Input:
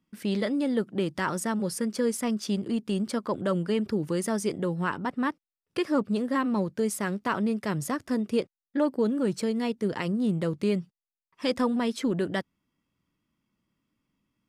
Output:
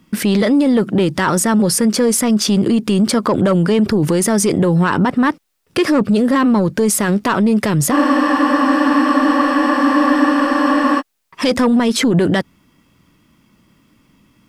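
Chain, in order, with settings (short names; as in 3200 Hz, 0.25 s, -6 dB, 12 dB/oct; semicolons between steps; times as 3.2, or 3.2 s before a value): in parallel at -10 dB: sine folder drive 6 dB, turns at -14.5 dBFS; on the sum: maximiser +25 dB; spectral freeze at 7.93, 3.06 s; gain -7 dB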